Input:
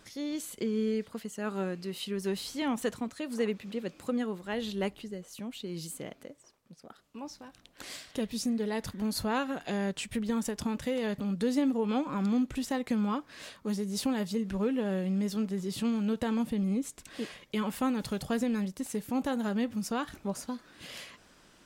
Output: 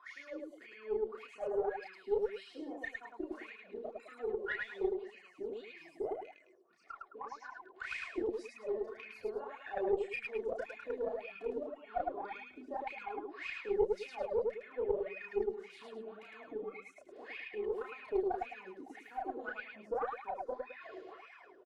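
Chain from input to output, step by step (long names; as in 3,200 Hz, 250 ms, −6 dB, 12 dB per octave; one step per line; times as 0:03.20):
spectral magnitudes quantised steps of 30 dB
comb filter 2.8 ms, depth 51%
downward compressor 10 to 1, threshold −37 dBFS, peak gain reduction 14.5 dB
LFO wah 1.8 Hz 360–2,500 Hz, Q 19
on a send: loudspeakers that aren't time-aligned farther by 11 metres −2 dB, 37 metres −1 dB, 73 metres −11 dB
on the sum: harmonic generator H 2 −13 dB, 7 −43 dB, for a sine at −34.5 dBFS
level +14 dB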